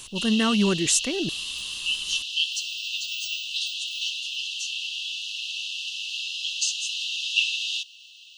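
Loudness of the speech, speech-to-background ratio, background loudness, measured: -23.5 LUFS, 3.5 dB, -27.0 LUFS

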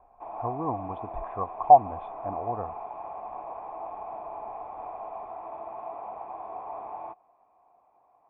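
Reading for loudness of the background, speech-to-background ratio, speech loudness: -39.0 LUFS, 14.0 dB, -25.0 LUFS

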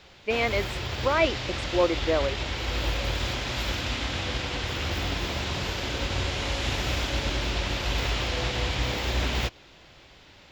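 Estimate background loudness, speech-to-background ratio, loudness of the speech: -29.0 LUFS, 2.0 dB, -27.0 LUFS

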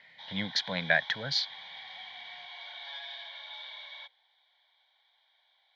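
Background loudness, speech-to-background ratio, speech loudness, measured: -43.0 LUFS, 12.5 dB, -30.5 LUFS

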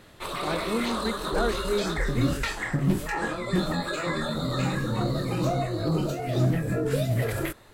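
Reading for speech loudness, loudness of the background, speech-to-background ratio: -31.5 LUFS, -28.0 LUFS, -3.5 dB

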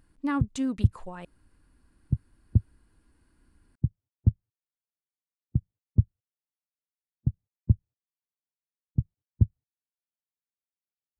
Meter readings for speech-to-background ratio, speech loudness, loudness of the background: -2.0 dB, -32.5 LUFS, -30.5 LUFS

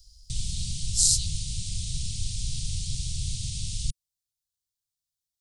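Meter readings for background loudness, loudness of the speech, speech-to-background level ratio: -32.5 LUFS, -23.0 LUFS, 9.5 dB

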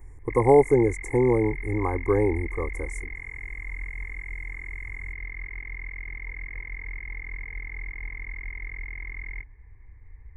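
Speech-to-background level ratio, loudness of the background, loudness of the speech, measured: 13.5 dB, -36.5 LUFS, -23.0 LUFS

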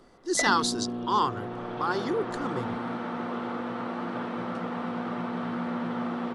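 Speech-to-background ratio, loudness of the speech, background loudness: 4.5 dB, -28.5 LUFS, -33.0 LUFS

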